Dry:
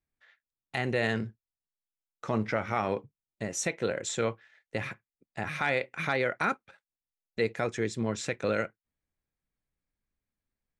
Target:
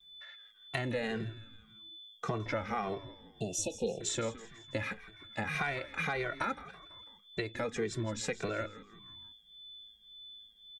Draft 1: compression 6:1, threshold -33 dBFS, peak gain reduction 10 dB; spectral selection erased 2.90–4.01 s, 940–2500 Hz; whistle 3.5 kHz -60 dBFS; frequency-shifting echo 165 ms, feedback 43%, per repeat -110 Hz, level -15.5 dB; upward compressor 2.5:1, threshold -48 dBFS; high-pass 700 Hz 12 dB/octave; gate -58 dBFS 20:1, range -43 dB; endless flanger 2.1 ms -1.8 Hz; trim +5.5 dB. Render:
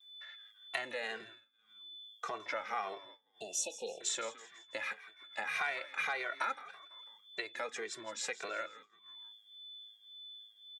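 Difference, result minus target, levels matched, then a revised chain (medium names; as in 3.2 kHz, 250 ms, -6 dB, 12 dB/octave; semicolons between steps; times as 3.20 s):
500 Hz band -3.5 dB
compression 6:1, threshold -33 dBFS, peak gain reduction 10 dB; spectral selection erased 2.90–4.01 s, 940–2500 Hz; whistle 3.5 kHz -60 dBFS; frequency-shifting echo 165 ms, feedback 43%, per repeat -110 Hz, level -15.5 dB; upward compressor 2.5:1, threshold -48 dBFS; gate -58 dBFS 20:1, range -43 dB; endless flanger 2.1 ms -1.8 Hz; trim +5.5 dB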